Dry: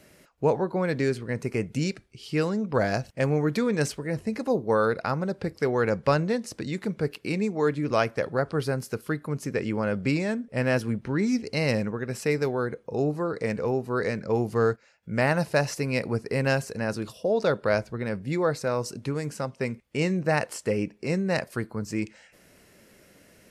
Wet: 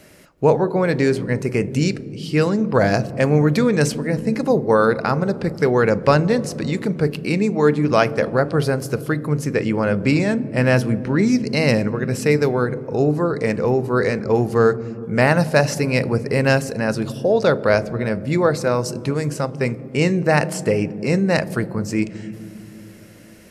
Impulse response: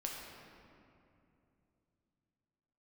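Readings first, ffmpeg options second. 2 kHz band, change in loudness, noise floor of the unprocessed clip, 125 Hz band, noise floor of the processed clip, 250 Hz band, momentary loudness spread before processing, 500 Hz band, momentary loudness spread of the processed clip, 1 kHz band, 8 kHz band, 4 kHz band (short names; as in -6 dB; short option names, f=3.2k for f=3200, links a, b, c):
+7.5 dB, +8.0 dB, -58 dBFS, +9.0 dB, -39 dBFS, +8.5 dB, 7 LU, +8.0 dB, 7 LU, +7.5 dB, +7.5 dB, +7.5 dB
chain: -filter_complex "[0:a]asplit=2[a][b];[b]tiltshelf=f=760:g=9.5[c];[1:a]atrim=start_sample=2205,adelay=40[d];[c][d]afir=irnorm=-1:irlink=0,volume=-15dB[e];[a][e]amix=inputs=2:normalize=0,volume=7.5dB"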